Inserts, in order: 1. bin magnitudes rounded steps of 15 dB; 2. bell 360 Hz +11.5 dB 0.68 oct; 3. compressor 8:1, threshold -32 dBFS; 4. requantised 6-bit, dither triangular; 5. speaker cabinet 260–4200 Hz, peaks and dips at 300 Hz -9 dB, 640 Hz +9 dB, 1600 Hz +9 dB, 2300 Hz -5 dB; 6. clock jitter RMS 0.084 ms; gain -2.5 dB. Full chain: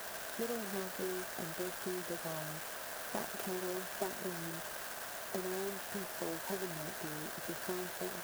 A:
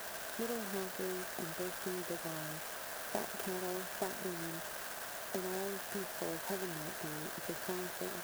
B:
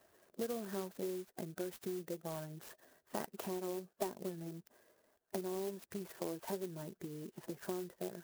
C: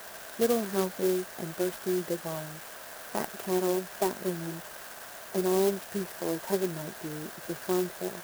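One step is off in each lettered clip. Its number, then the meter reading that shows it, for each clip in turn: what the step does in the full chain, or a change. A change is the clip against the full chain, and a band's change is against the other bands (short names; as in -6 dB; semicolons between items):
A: 1, crest factor change +2.0 dB; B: 4, crest factor change +3.0 dB; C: 3, momentary loudness spread change +10 LU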